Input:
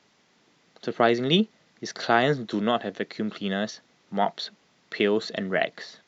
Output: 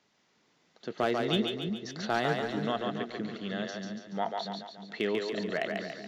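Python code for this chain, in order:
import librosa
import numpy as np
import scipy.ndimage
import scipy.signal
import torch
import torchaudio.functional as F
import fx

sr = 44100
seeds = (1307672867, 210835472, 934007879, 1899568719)

y = np.clip(10.0 ** (11.0 / 20.0) * x, -1.0, 1.0) / 10.0 ** (11.0 / 20.0)
y = fx.echo_split(y, sr, split_hz=330.0, low_ms=326, high_ms=142, feedback_pct=52, wet_db=-3.5)
y = y * librosa.db_to_amplitude(-8.0)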